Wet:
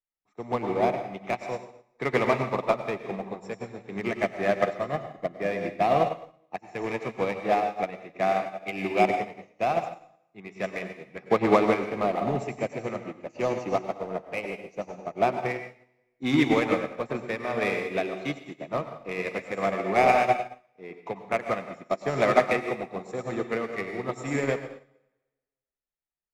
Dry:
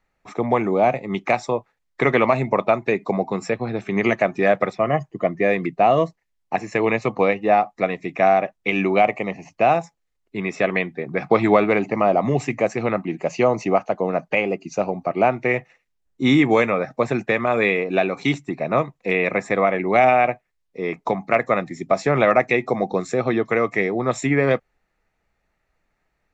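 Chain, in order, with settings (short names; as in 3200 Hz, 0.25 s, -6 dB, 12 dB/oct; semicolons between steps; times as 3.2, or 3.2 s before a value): in parallel at -9 dB: wavefolder -18.5 dBFS; on the sum: plate-style reverb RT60 1.3 s, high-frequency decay 0.95×, pre-delay 80 ms, DRR 1.5 dB; upward expander 2.5:1, over -31 dBFS; gain -3.5 dB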